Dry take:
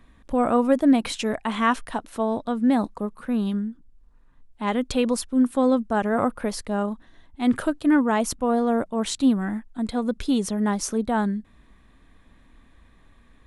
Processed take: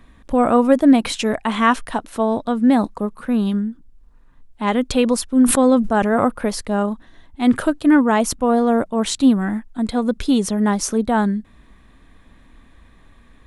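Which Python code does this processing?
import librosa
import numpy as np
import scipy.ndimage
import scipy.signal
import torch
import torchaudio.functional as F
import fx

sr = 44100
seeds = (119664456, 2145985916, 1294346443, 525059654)

y = fx.sustainer(x, sr, db_per_s=71.0, at=(5.26, 6.11))
y = y * librosa.db_to_amplitude(5.5)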